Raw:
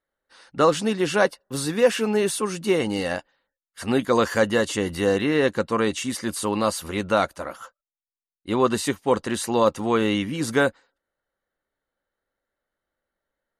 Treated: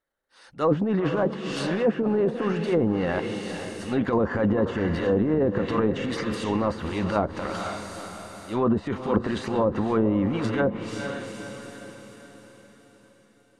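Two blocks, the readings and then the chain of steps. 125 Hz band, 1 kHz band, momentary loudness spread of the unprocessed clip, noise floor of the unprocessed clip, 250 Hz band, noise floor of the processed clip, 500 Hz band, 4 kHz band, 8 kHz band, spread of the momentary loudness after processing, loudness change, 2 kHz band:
+3.0 dB, −4.0 dB, 7 LU, below −85 dBFS, +1.0 dB, −58 dBFS, −2.5 dB, −8.0 dB, −13.5 dB, 13 LU, −2.5 dB, −6.0 dB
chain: transient designer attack −11 dB, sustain +9 dB
feedback delay with all-pass diffusion 475 ms, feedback 50%, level −9 dB
treble cut that deepens with the level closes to 630 Hz, closed at −16.5 dBFS

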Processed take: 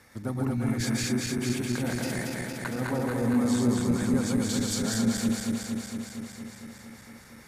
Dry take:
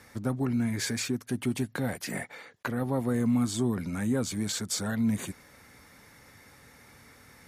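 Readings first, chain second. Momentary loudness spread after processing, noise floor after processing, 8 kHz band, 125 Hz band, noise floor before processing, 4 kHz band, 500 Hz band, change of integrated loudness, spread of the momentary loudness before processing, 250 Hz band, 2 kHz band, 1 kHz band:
17 LU, −50 dBFS, +2.5 dB, +2.0 dB, −56 dBFS, +2.5 dB, +2.5 dB, +2.0 dB, 9 LU, +3.0 dB, +2.5 dB, +2.5 dB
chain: feedback delay that plays each chunk backwards 115 ms, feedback 85%, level −2 dB
level −2.5 dB

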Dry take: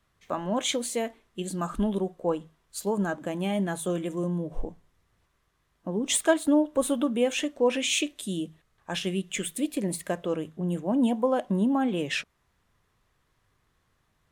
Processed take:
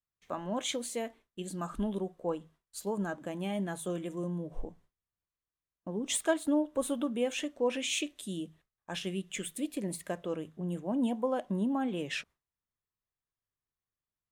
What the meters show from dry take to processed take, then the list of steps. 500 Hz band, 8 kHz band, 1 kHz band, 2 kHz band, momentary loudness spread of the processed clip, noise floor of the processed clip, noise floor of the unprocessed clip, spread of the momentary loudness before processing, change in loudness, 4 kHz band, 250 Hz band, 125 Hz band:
−6.5 dB, −6.5 dB, −6.5 dB, −6.5 dB, 11 LU, below −85 dBFS, −72 dBFS, 11 LU, −6.5 dB, −6.5 dB, −6.5 dB, −6.5 dB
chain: noise gate with hold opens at −48 dBFS
level −6.5 dB

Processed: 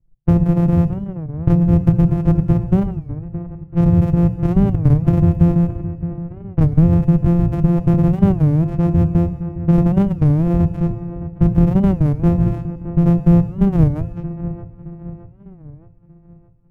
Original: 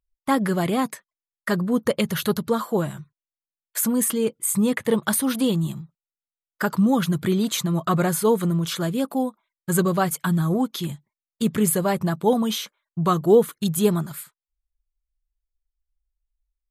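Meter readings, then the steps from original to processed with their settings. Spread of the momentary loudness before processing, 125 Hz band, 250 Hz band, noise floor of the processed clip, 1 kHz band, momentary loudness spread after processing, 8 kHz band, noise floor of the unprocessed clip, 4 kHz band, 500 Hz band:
10 LU, +14.0 dB, +7.0 dB, −46 dBFS, −4.0 dB, 13 LU, below −25 dB, below −85 dBFS, below −15 dB, −2.0 dB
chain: samples sorted by size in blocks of 256 samples
RIAA equalisation playback
reverb reduction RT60 0.51 s
mains-hum notches 60/120/180 Hz
low-pass that shuts in the quiet parts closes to 2,500 Hz, open at −13.5 dBFS
octave-band graphic EQ 125/1,000/2,000/4,000/8,000 Hz +10/−4/−6/−12/−8 dB
in parallel at −2 dB: brickwall limiter −2.5 dBFS, peak gain reduction 8.5 dB
on the sum: downward compressor 2.5 to 1, threshold −7 dBFS, peak gain reduction 7.5 dB
on a send: delay with a low-pass on its return 618 ms, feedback 47%, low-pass 1,800 Hz, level −12 dB
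on the sum: feedback delay network reverb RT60 1.2 s, high-frequency decay 0.95×, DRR 9.5 dB
wow of a warped record 33 1/3 rpm, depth 250 cents
level −3 dB

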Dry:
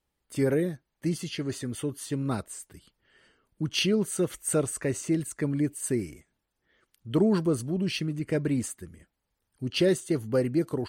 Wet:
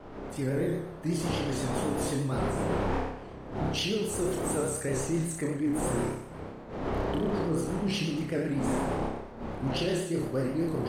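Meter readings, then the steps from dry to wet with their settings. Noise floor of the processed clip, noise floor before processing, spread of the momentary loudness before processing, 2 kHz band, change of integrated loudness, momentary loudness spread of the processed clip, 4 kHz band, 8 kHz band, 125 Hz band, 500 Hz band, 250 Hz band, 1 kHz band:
−44 dBFS, −82 dBFS, 10 LU, −0.5 dB, −2.5 dB, 7 LU, −2.0 dB, −2.5 dB, −0.5 dB, −1.5 dB, −2.0 dB, +8.5 dB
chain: wind on the microphone 570 Hz −30 dBFS
camcorder AGC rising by 7.3 dB per second
on a send: flutter between parallel walls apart 5.2 metres, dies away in 0.73 s
on the sum: pitch vibrato 8.2 Hz 79 cents
reversed playback
downward compressor, threshold −18 dBFS, peak gain reduction 6.5 dB
reversed playback
level −7 dB

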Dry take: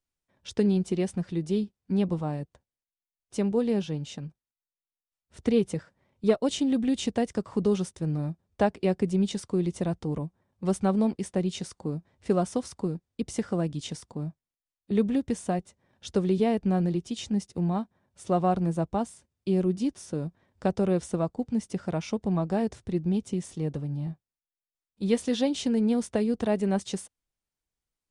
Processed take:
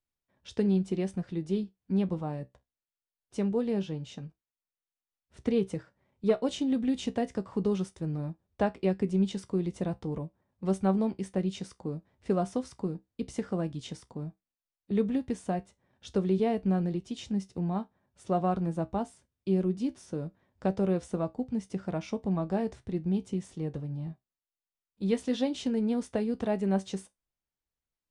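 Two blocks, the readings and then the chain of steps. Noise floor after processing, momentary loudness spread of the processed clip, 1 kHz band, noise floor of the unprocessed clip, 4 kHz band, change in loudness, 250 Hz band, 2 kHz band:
below −85 dBFS, 12 LU, −3.0 dB, below −85 dBFS, −5.5 dB, −3.0 dB, −3.0 dB, −4.0 dB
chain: high-shelf EQ 5,500 Hz −8 dB
tuned comb filter 64 Hz, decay 0.17 s, harmonics all, mix 60%

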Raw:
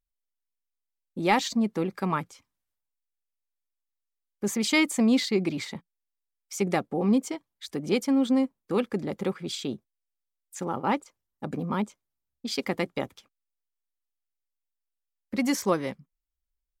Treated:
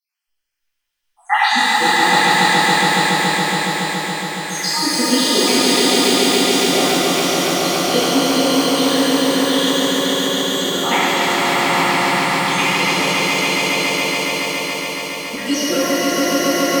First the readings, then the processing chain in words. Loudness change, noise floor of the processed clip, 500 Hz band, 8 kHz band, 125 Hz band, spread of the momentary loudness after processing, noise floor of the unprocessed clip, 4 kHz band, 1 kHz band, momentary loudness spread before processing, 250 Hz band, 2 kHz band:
+12.5 dB, −73 dBFS, +12.5 dB, +19.0 dB, +9.0 dB, 7 LU, −85 dBFS, +21.5 dB, +17.0 dB, 15 LU, +9.0 dB, +19.5 dB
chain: time-frequency cells dropped at random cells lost 77%
parametric band 2,700 Hz +14 dB 2.4 octaves
in parallel at 0 dB: downward compressor, threshold −38 dBFS, peak gain reduction 23 dB
on the sum: dynamic equaliser 150 Hz, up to −4 dB, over −40 dBFS, Q 0.83
on a send: echo that builds up and dies away 140 ms, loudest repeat 5, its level −4 dB
on the sum: reverb with rising layers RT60 2.7 s, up +12 semitones, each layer −8 dB, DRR −11 dB
level −3.5 dB

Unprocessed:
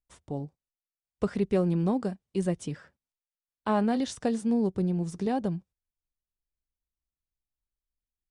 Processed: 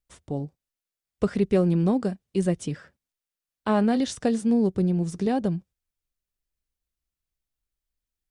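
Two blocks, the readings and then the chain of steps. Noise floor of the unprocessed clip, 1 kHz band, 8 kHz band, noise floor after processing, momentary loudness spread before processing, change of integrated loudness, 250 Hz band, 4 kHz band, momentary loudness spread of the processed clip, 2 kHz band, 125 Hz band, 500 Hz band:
below −85 dBFS, +2.0 dB, +4.5 dB, below −85 dBFS, 12 LU, +4.0 dB, +4.5 dB, +4.5 dB, 12 LU, +4.0 dB, +4.5 dB, +4.0 dB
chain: parametric band 920 Hz −4 dB 0.67 octaves
level +4.5 dB

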